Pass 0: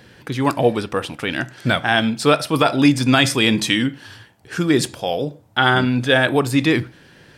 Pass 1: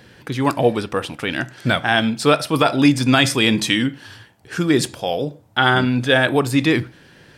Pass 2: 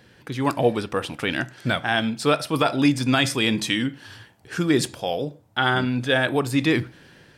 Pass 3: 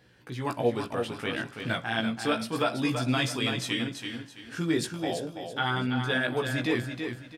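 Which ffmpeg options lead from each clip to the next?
ffmpeg -i in.wav -af anull out.wav
ffmpeg -i in.wav -af "dynaudnorm=framelen=110:gausssize=7:maxgain=11.5dB,volume=-6.5dB" out.wav
ffmpeg -i in.wav -af "flanger=delay=16:depth=2.4:speed=0.32,aecho=1:1:332|664|996|1328:0.473|0.147|0.0455|0.0141,volume=-4.5dB" out.wav

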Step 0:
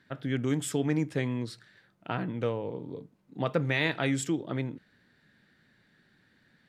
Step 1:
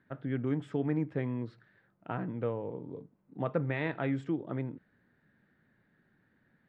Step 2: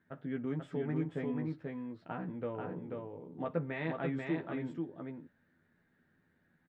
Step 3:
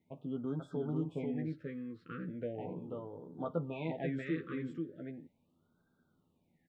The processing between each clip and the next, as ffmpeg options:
ffmpeg -i in.wav -af "lowpass=1600,volume=-3dB" out.wav
ffmpeg -i in.wav -filter_complex "[0:a]asplit=2[link_01][link_02];[link_02]adelay=12,volume=-4dB[link_03];[link_01][link_03]amix=inputs=2:normalize=0,aecho=1:1:487:0.668,volume=-5.5dB" out.wav
ffmpeg -i in.wav -af "afftfilt=real='re*(1-between(b*sr/1024,730*pow(2300/730,0.5+0.5*sin(2*PI*0.38*pts/sr))/1.41,730*pow(2300/730,0.5+0.5*sin(2*PI*0.38*pts/sr))*1.41))':imag='im*(1-between(b*sr/1024,730*pow(2300/730,0.5+0.5*sin(2*PI*0.38*pts/sr))/1.41,730*pow(2300/730,0.5+0.5*sin(2*PI*0.38*pts/sr))*1.41))':win_size=1024:overlap=0.75,volume=-1dB" out.wav

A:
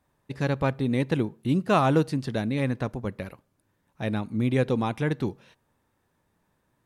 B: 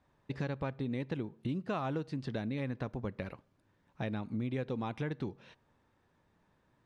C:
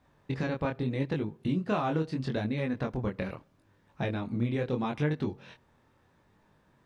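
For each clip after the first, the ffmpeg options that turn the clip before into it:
ffmpeg -i in.wav -af "lowpass=5100,acompressor=threshold=-34dB:ratio=5" out.wav
ffmpeg -i in.wav -af "flanger=delay=19.5:depth=6.2:speed=0.77,volume=9dB" out.wav

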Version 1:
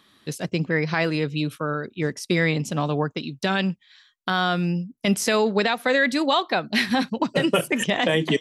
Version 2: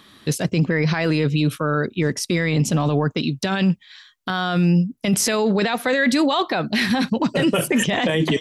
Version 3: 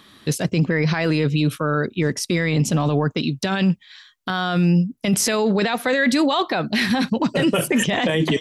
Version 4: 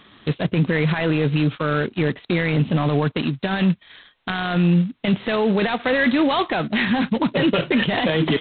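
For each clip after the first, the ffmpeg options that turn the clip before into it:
ffmpeg -i in.wav -af "lowshelf=frequency=190:gain=4,alimiter=limit=-19.5dB:level=0:latency=1:release=10,volume=8.5dB" out.wav
ffmpeg -i in.wav -af anull out.wav
ffmpeg -i in.wav -ar 8000 -c:a adpcm_g726 -b:a 16k out.wav

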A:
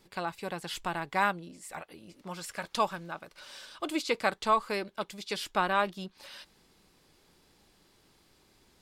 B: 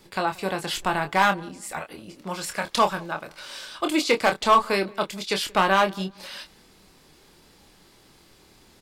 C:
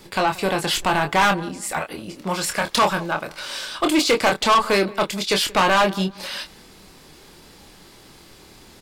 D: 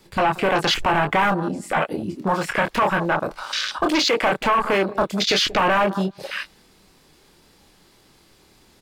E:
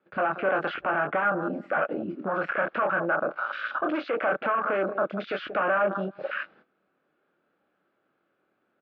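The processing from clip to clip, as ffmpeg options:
ffmpeg -i in.wav -filter_complex "[0:a]acrossover=split=430[link_01][link_02];[link_02]volume=21.5dB,asoftclip=hard,volume=-21.5dB[link_03];[link_01][link_03]amix=inputs=2:normalize=0,asplit=2[link_04][link_05];[link_05]adelay=26,volume=-7dB[link_06];[link_04][link_06]amix=inputs=2:normalize=0,asplit=2[link_07][link_08];[link_08]adelay=179,lowpass=frequency=1400:poles=1,volume=-23dB,asplit=2[link_09][link_10];[link_10]adelay=179,lowpass=frequency=1400:poles=1,volume=0.29[link_11];[link_07][link_09][link_11]amix=inputs=3:normalize=0,volume=8.5dB" out.wav
ffmpeg -i in.wav -af "asoftclip=type=tanh:threshold=-20dB,volume=8dB" out.wav
ffmpeg -i in.wav -filter_complex "[0:a]acrossover=split=520|6000[link_01][link_02][link_03];[link_01]acompressor=threshold=-31dB:ratio=4[link_04];[link_02]acompressor=threshold=-23dB:ratio=4[link_05];[link_03]acompressor=threshold=-33dB:ratio=4[link_06];[link_04][link_05][link_06]amix=inputs=3:normalize=0,volume=23dB,asoftclip=hard,volume=-23dB,afwtdn=0.0282,volume=8.5dB" out.wav
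ffmpeg -i in.wav -af "agate=range=-14dB:threshold=-50dB:ratio=16:detection=peak,alimiter=limit=-19.5dB:level=0:latency=1:release=13,highpass=270,equalizer=frequency=410:width_type=q:width=4:gain=-3,equalizer=frequency=590:width_type=q:width=4:gain=5,equalizer=frequency=940:width_type=q:width=4:gain=-9,equalizer=frequency=1400:width_type=q:width=4:gain=9,equalizer=frequency=2000:width_type=q:width=4:gain=-8,lowpass=frequency=2200:width=0.5412,lowpass=frequency=2200:width=1.3066" out.wav

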